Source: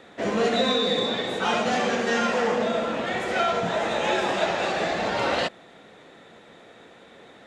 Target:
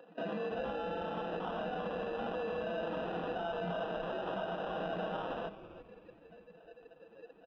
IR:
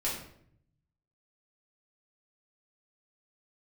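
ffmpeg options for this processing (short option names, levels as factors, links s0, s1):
-filter_complex "[0:a]bandreject=f=50:t=h:w=6,bandreject=f=100:t=h:w=6,bandreject=f=150:t=h:w=6,bandreject=f=200:t=h:w=6,bandreject=f=250:t=h:w=6,bandreject=f=300:t=h:w=6,bandreject=f=350:t=h:w=6,afftdn=nr=23:nf=-37,bandreject=f=850:w=12,aecho=1:1:6.2:0.67,adynamicequalizer=threshold=0.0126:dfrequency=1800:dqfactor=1.2:tfrequency=1800:tqfactor=1.2:attack=5:release=100:ratio=0.375:range=2:mode=cutabove:tftype=bell,acompressor=threshold=0.0224:ratio=10,alimiter=level_in=2.99:limit=0.0631:level=0:latency=1:release=58,volume=0.335,acompressor=mode=upward:threshold=0.00178:ratio=2.5,acrusher=samples=20:mix=1:aa=0.000001,highpass=f=160:w=0.5412,highpass=f=160:w=1.3066,equalizer=f=170:t=q:w=4:g=5,equalizer=f=350:t=q:w=4:g=-4,equalizer=f=730:t=q:w=4:g=3,equalizer=f=1800:t=q:w=4:g=-7,lowpass=f=2900:w=0.5412,lowpass=f=2900:w=1.3066,asplit=2[s0][s1];[s1]asplit=3[s2][s3][s4];[s2]adelay=329,afreqshift=-150,volume=0.2[s5];[s3]adelay=658,afreqshift=-300,volume=0.07[s6];[s4]adelay=987,afreqshift=-450,volume=0.0245[s7];[s5][s6][s7]amix=inputs=3:normalize=0[s8];[s0][s8]amix=inputs=2:normalize=0,volume=1.58"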